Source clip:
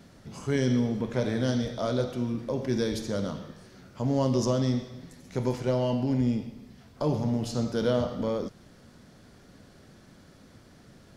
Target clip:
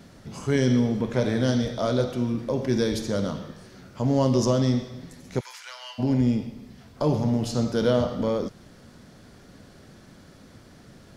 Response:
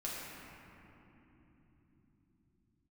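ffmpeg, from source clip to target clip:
-filter_complex "[0:a]asplit=3[s0][s1][s2];[s0]afade=t=out:st=5.39:d=0.02[s3];[s1]highpass=f=1300:w=0.5412,highpass=f=1300:w=1.3066,afade=t=in:st=5.39:d=0.02,afade=t=out:st=5.98:d=0.02[s4];[s2]afade=t=in:st=5.98:d=0.02[s5];[s3][s4][s5]amix=inputs=3:normalize=0,volume=1.58"

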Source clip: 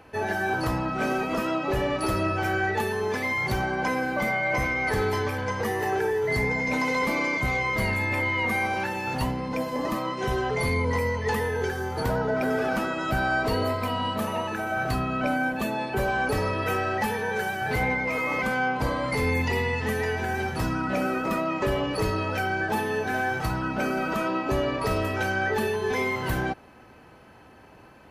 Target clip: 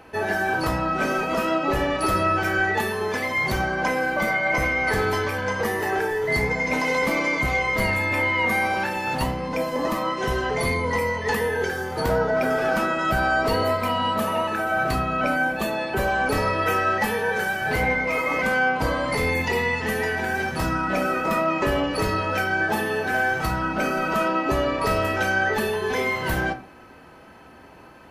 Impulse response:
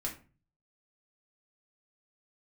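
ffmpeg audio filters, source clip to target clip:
-filter_complex "[0:a]asplit=2[s0][s1];[1:a]atrim=start_sample=2205,lowshelf=f=190:g=-9[s2];[s1][s2]afir=irnorm=-1:irlink=0,volume=0.75[s3];[s0][s3]amix=inputs=2:normalize=0"

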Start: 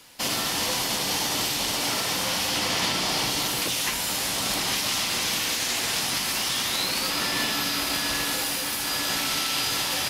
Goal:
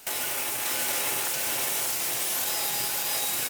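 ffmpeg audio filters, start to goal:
-af "alimiter=limit=0.0794:level=0:latency=1:release=326,asetrate=127449,aresample=44100,aecho=1:1:587:0.668,volume=1.5"

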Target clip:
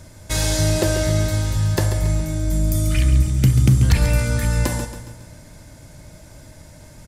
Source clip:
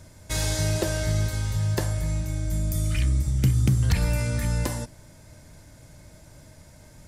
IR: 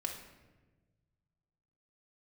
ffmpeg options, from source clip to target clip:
-filter_complex "[0:a]aecho=1:1:138|276|414|552|690:0.316|0.149|0.0699|0.0328|0.0154,asplit=2[s0][s1];[1:a]atrim=start_sample=2205[s2];[s1][s2]afir=irnorm=-1:irlink=0,volume=0.251[s3];[s0][s3]amix=inputs=2:normalize=0,volume=1.58"

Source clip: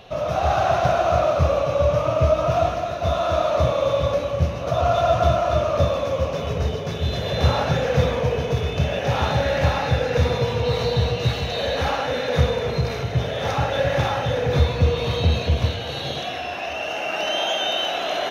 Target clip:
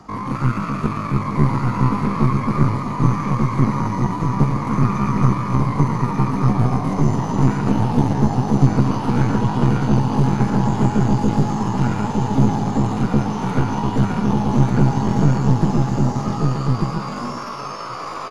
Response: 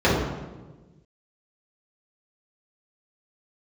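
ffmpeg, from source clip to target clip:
-filter_complex "[0:a]tiltshelf=f=680:g=9.5,asplit=2[s0][s1];[s1]aecho=0:1:135|270:0.251|0.0427[s2];[s0][s2]amix=inputs=2:normalize=0,acrossover=split=94|220|1600[s3][s4][s5][s6];[s3]acompressor=threshold=0.178:ratio=4[s7];[s4]acompressor=threshold=0.0891:ratio=4[s8];[s5]acompressor=threshold=0.0447:ratio=4[s9];[s6]acompressor=threshold=0.00794:ratio=4[s10];[s7][s8][s9][s10]amix=inputs=4:normalize=0,asetrate=76340,aresample=44100,atempo=0.577676,aeval=exprs='1.12*(cos(1*acos(clip(val(0)/1.12,-1,1)))-cos(1*PI/2))+0.178*(cos(6*acos(clip(val(0)/1.12,-1,1)))-cos(6*PI/2))':c=same,asplit=2[s11][s12];[s12]aecho=0:1:1192:0.708[s13];[s11][s13]amix=inputs=2:normalize=0,volume=0.841"

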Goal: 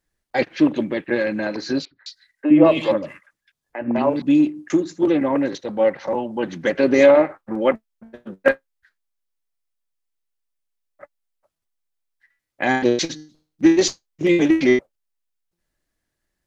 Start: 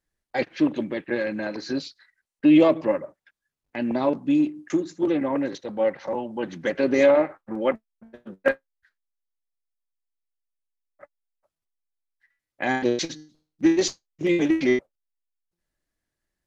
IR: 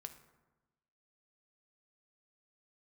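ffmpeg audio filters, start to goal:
-filter_complex "[0:a]asettb=1/sr,asplit=3[s0][s1][s2];[s0]atrim=end=1.854[s3];[s1]atrim=start=1.85:end=4.22,asetpts=PTS-STARTPTS,afade=t=in:d=0.004:c=qsin,afade=t=out:st=2.366:d=0.004:c=qsin,acrossover=split=350|2000[s4][s5][s6];[s4]adelay=60[s7];[s6]adelay=210[s8];[s7][s5][s8]amix=inputs=3:normalize=0,atrim=end_sample=104517[s9];[s2]atrim=start=4.216[s10];[s3][s9]acrossfade=d=0.004:c1=hsin:c2=qsin[s11];[s11][s10]acrossfade=d=0.004:c1=qsin:c2=hsin,volume=1.78"

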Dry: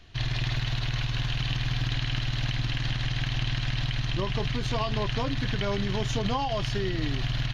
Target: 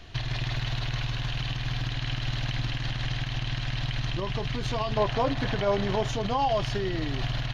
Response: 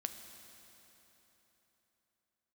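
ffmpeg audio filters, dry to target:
-af "alimiter=level_in=1.19:limit=0.0631:level=0:latency=1:release=392,volume=0.841,asetnsamples=n=441:p=0,asendcmd='4.97 equalizer g 12.5;6.09 equalizer g 6.5',equalizer=f=680:w=0.83:g=3.5,volume=1.88"

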